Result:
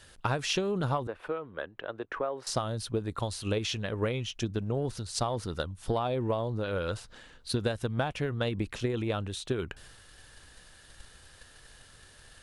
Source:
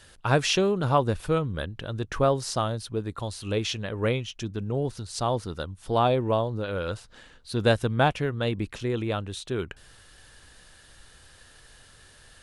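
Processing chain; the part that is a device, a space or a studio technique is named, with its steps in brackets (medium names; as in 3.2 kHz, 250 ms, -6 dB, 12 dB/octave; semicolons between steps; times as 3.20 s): drum-bus smash (transient shaper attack +8 dB, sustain +4 dB; compression 16:1, threshold -22 dBFS, peak gain reduction 13 dB; saturation -12 dBFS, distortion -27 dB); 1.07–2.47 s: three-band isolator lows -22 dB, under 320 Hz, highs -23 dB, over 2.6 kHz; trim -2.5 dB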